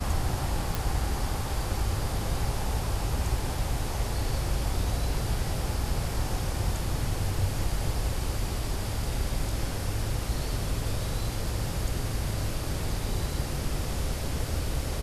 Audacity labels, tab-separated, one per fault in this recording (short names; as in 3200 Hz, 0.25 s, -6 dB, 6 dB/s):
0.750000	0.750000	pop